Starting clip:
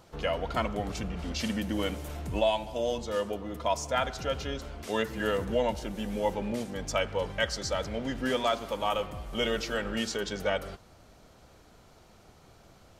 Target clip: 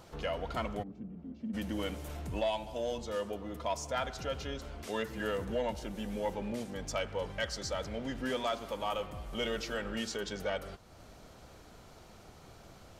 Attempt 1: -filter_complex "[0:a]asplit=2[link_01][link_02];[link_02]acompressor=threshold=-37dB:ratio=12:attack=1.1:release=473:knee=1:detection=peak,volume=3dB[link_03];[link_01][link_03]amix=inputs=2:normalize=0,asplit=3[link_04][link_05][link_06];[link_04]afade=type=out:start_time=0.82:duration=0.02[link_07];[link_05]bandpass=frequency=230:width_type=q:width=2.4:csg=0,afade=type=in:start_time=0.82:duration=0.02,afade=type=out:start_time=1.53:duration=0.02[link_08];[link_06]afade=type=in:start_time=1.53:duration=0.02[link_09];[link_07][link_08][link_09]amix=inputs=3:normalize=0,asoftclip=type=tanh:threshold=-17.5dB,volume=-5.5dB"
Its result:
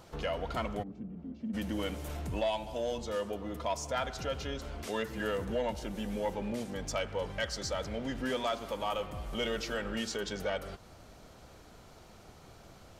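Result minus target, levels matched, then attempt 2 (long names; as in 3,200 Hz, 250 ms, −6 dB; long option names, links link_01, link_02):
downward compressor: peak gain reduction −8.5 dB
-filter_complex "[0:a]asplit=2[link_01][link_02];[link_02]acompressor=threshold=-46.5dB:ratio=12:attack=1.1:release=473:knee=1:detection=peak,volume=3dB[link_03];[link_01][link_03]amix=inputs=2:normalize=0,asplit=3[link_04][link_05][link_06];[link_04]afade=type=out:start_time=0.82:duration=0.02[link_07];[link_05]bandpass=frequency=230:width_type=q:width=2.4:csg=0,afade=type=in:start_time=0.82:duration=0.02,afade=type=out:start_time=1.53:duration=0.02[link_08];[link_06]afade=type=in:start_time=1.53:duration=0.02[link_09];[link_07][link_08][link_09]amix=inputs=3:normalize=0,asoftclip=type=tanh:threshold=-17.5dB,volume=-5.5dB"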